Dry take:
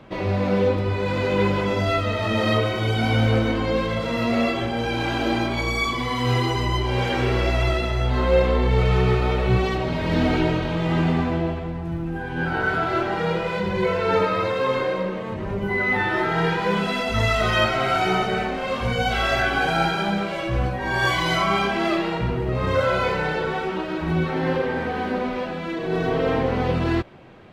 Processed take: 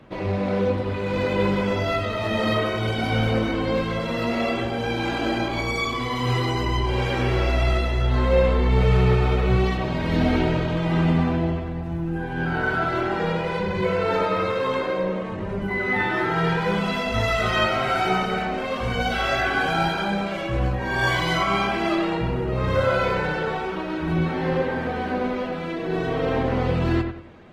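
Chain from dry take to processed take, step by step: feedback echo behind a low-pass 96 ms, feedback 32%, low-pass 2.7 kHz, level -6.5 dB; trim -2 dB; Opus 20 kbps 48 kHz

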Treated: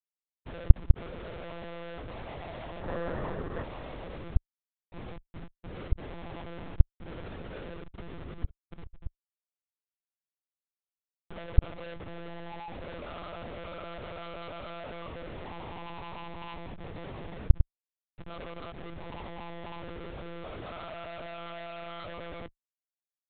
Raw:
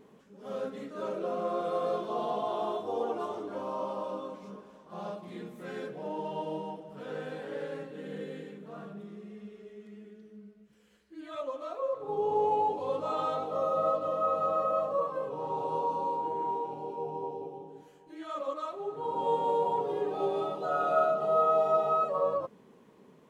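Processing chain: level-controlled noise filter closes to 2.2 kHz, open at -26.5 dBFS; Schmitt trigger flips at -36 dBFS; time-frequency box 2.81–3.63 s, 210–2000 Hz +8 dB; monotone LPC vocoder at 8 kHz 170 Hz; trim -8 dB

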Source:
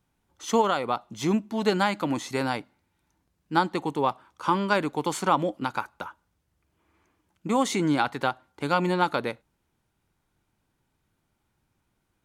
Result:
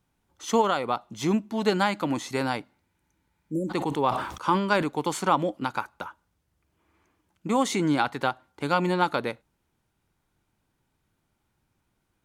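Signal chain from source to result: 2.91–3.68 s: spectral replace 610–5700 Hz before; 3.59–4.88 s: decay stretcher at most 69 dB/s

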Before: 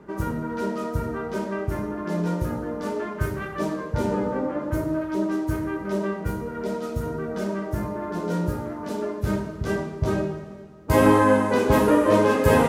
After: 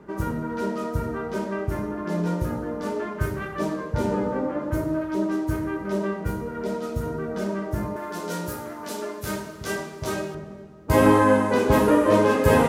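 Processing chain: 7.96–10.35 s: tilt EQ +3 dB/octave

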